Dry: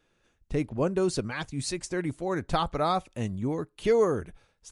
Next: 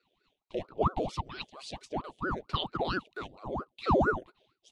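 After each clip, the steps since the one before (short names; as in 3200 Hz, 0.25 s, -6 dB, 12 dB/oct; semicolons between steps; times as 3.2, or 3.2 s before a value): double band-pass 1300 Hz, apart 2.6 oct; ring modulator with a swept carrier 500 Hz, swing 90%, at 4.4 Hz; gain +8.5 dB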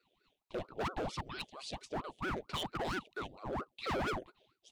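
hard clip -32 dBFS, distortion -4 dB; gain -1 dB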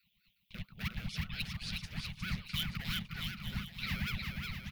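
EQ curve 200 Hz 0 dB, 320 Hz -30 dB, 470 Hz -30 dB, 960 Hz -24 dB, 2200 Hz +1 dB, 3500 Hz -2 dB, 5000 Hz -2 dB, 7900 Hz -10 dB, 14000 Hz +10 dB; on a send: bouncing-ball echo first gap 0.36 s, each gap 0.8×, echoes 5; on the sum: gain +5 dB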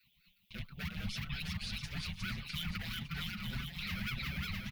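limiter -34.5 dBFS, peak gain reduction 11.5 dB; endless flanger 5.6 ms +1.7 Hz; gain +7 dB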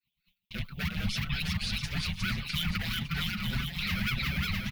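expander -58 dBFS; gain +8 dB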